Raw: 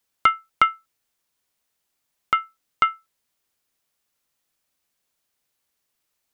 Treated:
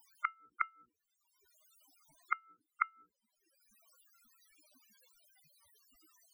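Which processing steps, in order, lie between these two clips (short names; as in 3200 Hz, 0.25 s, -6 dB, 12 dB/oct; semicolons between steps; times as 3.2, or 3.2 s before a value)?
notches 60/120/180/240/300/360/420/480 Hz; in parallel at -2 dB: upward compressor, threshold -22 dBFS; on the sum: loudest bins only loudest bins 8; small resonant body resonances 210/300 Hz, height 10 dB, ringing for 30 ms; flipped gate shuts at -12 dBFS, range -34 dB; gain -3 dB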